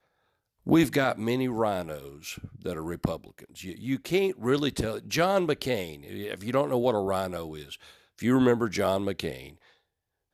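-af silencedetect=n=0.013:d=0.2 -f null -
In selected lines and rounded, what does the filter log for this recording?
silence_start: 0.00
silence_end: 0.67 | silence_duration: 0.67
silence_start: 7.75
silence_end: 8.19 | silence_duration: 0.43
silence_start: 9.50
silence_end: 10.33 | silence_duration: 0.83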